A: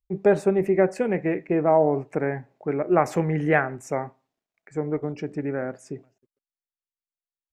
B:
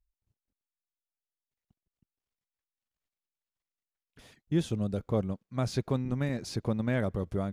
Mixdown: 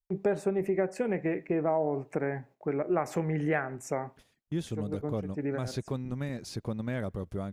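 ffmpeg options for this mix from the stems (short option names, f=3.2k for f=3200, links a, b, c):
-filter_complex "[0:a]volume=-2.5dB[a];[1:a]volume=-3.5dB,asplit=2[b][c];[c]apad=whole_len=332030[d];[a][d]sidechaincompress=threshold=-40dB:ratio=8:attack=6:release=133[e];[e][b]amix=inputs=2:normalize=0,agate=range=-10dB:threshold=-51dB:ratio=16:detection=peak,highshelf=f=8.7k:g=4.5,acompressor=threshold=-27dB:ratio=2.5"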